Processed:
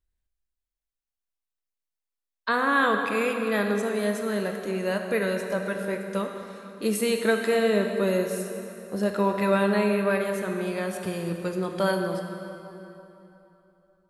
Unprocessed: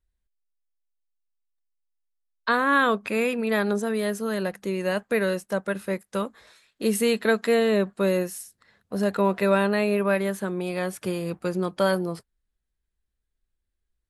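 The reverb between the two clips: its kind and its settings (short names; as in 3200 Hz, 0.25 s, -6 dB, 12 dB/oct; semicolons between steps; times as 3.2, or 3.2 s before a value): plate-style reverb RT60 3.2 s, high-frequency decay 0.75×, DRR 3.5 dB; gain -2.5 dB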